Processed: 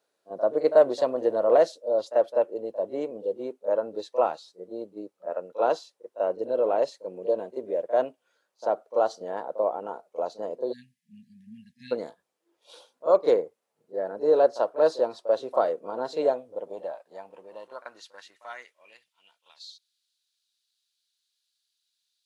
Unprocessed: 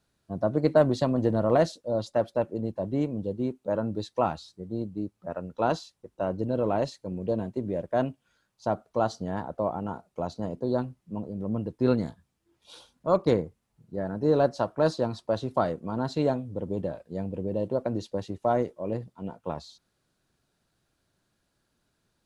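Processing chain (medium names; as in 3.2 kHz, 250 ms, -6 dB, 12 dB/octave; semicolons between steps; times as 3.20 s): pre-echo 38 ms -14.5 dB; spectral selection erased 10.72–11.92 s, 250–1600 Hz; high-pass sweep 490 Hz -> 3.8 kHz, 16.23–19.69 s; trim -2.5 dB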